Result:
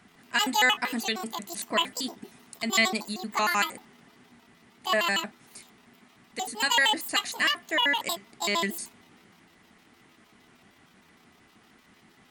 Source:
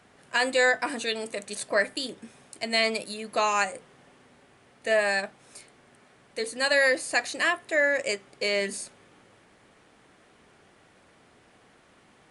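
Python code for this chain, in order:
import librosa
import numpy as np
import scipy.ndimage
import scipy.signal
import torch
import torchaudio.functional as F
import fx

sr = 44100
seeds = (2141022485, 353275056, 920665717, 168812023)

y = fx.pitch_trill(x, sr, semitones=9.0, every_ms=77)
y = fx.peak_eq(y, sr, hz=540.0, db=-11.0, octaves=0.41)
y = fx.small_body(y, sr, hz=(220.0, 2000.0), ring_ms=35, db=8)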